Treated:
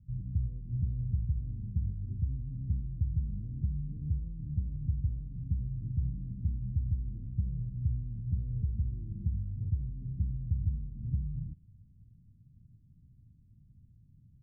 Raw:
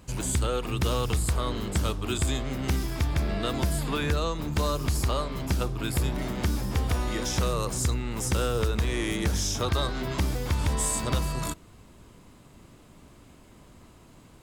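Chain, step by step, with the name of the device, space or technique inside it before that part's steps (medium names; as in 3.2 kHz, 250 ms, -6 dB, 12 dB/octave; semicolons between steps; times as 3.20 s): the neighbour's flat through the wall (low-pass 180 Hz 24 dB/octave; peaking EQ 110 Hz +8 dB 0.97 oct); trim -8 dB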